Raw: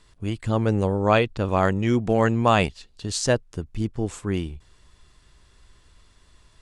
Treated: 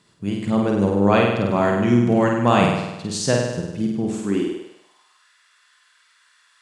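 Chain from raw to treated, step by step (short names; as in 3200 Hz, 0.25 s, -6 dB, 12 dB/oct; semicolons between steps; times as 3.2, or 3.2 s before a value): flutter echo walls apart 8.6 m, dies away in 1 s; high-pass sweep 160 Hz -> 1500 Hz, 4.1–5.31; gain -1 dB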